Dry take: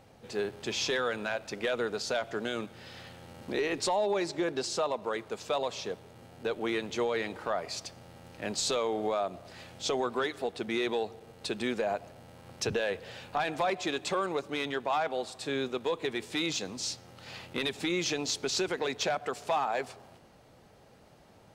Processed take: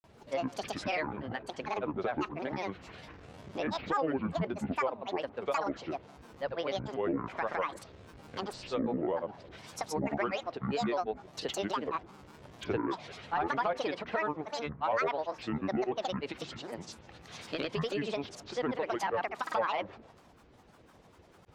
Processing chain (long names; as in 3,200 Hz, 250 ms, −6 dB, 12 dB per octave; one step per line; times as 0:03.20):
treble cut that deepens with the level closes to 2,100 Hz, closed at −31 dBFS
high-shelf EQ 8,200 Hz −4.5 dB
granular cloud, pitch spread up and down by 12 semitones